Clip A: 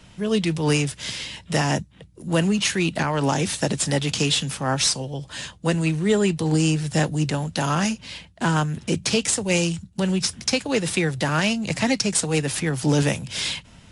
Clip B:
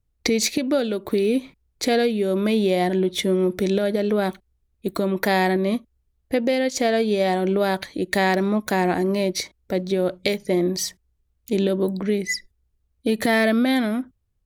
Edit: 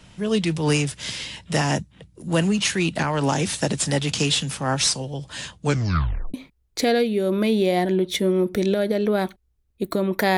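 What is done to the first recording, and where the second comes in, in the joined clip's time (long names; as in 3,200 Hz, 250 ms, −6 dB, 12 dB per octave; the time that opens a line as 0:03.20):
clip A
0:05.60: tape stop 0.74 s
0:06.34: continue with clip B from 0:01.38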